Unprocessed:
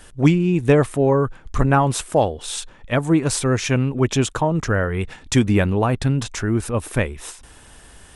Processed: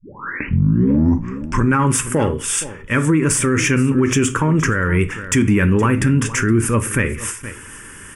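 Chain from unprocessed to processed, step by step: tape start-up on the opening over 1.79 s; in parallel at -9.5 dB: saturation -18.5 dBFS, distortion -9 dB; on the sum: high-pass 150 Hz 6 dB/octave; static phaser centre 1.7 kHz, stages 4; delay 469 ms -19 dB; on a send at -9 dB: reverberation RT60 0.30 s, pre-delay 3 ms; on the sum: loudness maximiser +16.5 dB; trim -6.5 dB

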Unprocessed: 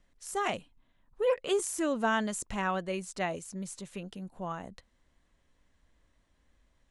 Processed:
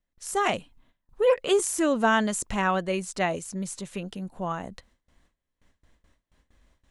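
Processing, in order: gate with hold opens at -58 dBFS; trim +6.5 dB

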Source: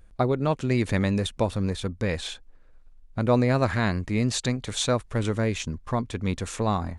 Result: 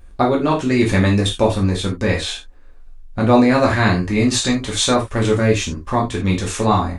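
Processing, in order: gated-style reverb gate 110 ms falling, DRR -2.5 dB; trim +5.5 dB

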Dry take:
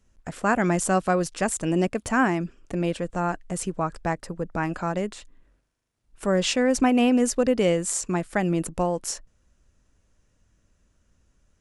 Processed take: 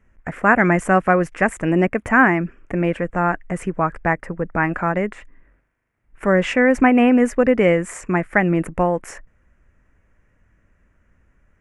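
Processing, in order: resonant high shelf 2.9 kHz -12.5 dB, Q 3; trim +5.5 dB

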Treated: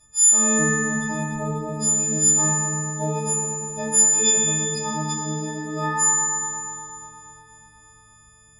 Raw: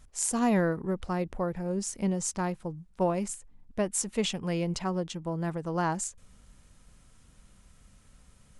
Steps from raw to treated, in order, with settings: partials quantised in pitch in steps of 6 st; FDN reverb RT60 3.6 s, high-frequency decay 0.65×, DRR -9 dB; trim -8 dB

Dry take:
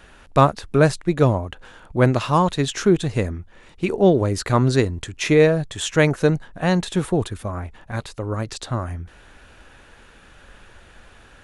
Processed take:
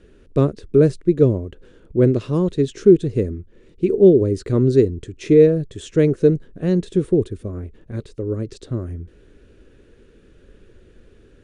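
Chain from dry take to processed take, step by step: elliptic low-pass 9.7 kHz, stop band 40 dB; resonant low shelf 580 Hz +11.5 dB, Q 3; trim -11 dB

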